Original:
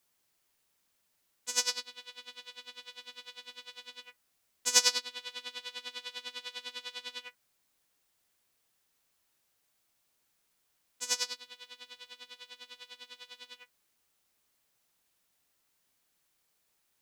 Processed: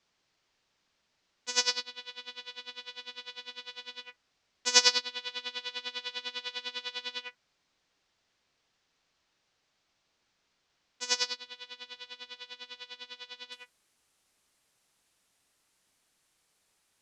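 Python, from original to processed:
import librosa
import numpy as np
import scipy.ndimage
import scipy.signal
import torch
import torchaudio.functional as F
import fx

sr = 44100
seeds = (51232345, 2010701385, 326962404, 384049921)

y = fx.lowpass(x, sr, hz=fx.steps((0.0, 5800.0), (13.52, 11000.0)), slope=24)
y = F.gain(torch.from_numpy(y), 4.5).numpy()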